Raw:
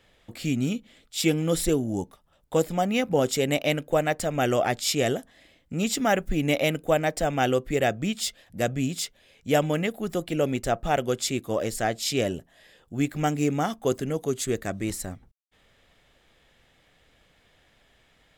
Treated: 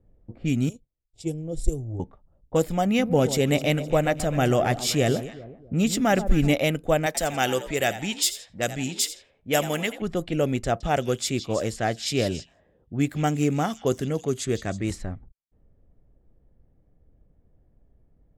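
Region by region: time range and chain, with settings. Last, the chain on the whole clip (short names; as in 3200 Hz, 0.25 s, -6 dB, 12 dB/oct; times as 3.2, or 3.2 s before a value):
0.69–2 gate -51 dBFS, range -19 dB + EQ curve 140 Hz 0 dB, 200 Hz -20 dB, 340 Hz -8 dB, 730 Hz -11 dB, 1300 Hz -29 dB, 3500 Hz -18 dB, 8800 Hz +3 dB, 14000 Hz -8 dB + transient shaper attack +3 dB, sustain -8 dB
2.86–6.54 bell 160 Hz +3 dB 1.8 oct + echo with dull and thin repeats by turns 0.128 s, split 1100 Hz, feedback 63%, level -11.5 dB
7.06–10.02 tilt +2.5 dB/oct + frequency-shifting echo 85 ms, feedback 42%, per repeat +68 Hz, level -13.5 dB
10.64–14.96 HPF 53 Hz + delay with a stepping band-pass 0.162 s, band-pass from 3900 Hz, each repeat 0.7 oct, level -7.5 dB
whole clip: low-pass opened by the level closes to 370 Hz, open at -23 dBFS; low shelf 100 Hz +10.5 dB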